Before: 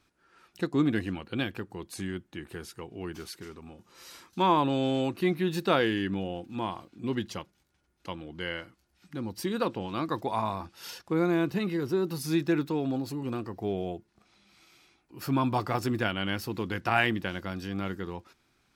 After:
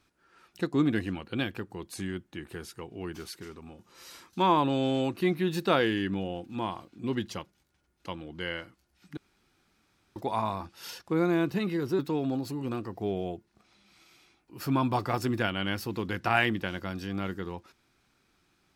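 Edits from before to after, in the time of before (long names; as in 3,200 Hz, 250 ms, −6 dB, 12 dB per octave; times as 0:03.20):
0:09.17–0:10.16: fill with room tone
0:11.99–0:12.60: remove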